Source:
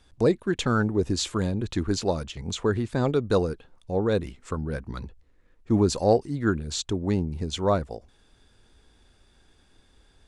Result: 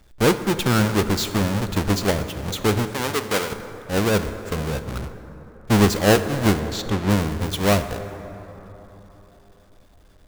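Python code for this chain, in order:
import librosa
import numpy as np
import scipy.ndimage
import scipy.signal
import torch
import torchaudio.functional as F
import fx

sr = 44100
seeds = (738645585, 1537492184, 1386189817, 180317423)

y = fx.halfwave_hold(x, sr)
y = fx.highpass(y, sr, hz=730.0, slope=6, at=(2.9, 3.52))
y = fx.high_shelf(y, sr, hz=fx.line((6.59, 9500.0), (7.09, 6200.0)), db=-12.0, at=(6.59, 7.09), fade=0.02)
y = fx.rev_plate(y, sr, seeds[0], rt60_s=4.0, hf_ratio=0.4, predelay_ms=0, drr_db=9.5)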